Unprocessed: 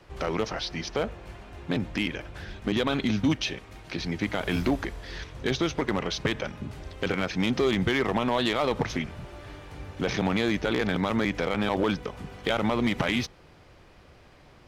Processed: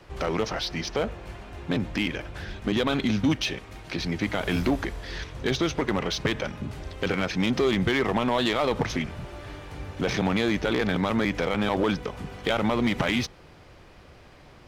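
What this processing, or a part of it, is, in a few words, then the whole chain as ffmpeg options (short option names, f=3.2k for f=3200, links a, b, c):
parallel distortion: -filter_complex "[0:a]asplit=2[a][b];[b]asoftclip=type=hard:threshold=-31.5dB,volume=-7dB[c];[a][c]amix=inputs=2:normalize=0"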